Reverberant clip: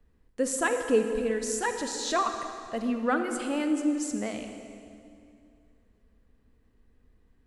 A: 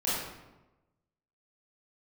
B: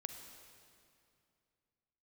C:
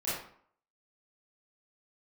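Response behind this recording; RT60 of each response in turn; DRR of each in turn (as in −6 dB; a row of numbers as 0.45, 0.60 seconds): B; 1.0, 2.5, 0.60 seconds; −10.0, 6.0, −11.5 decibels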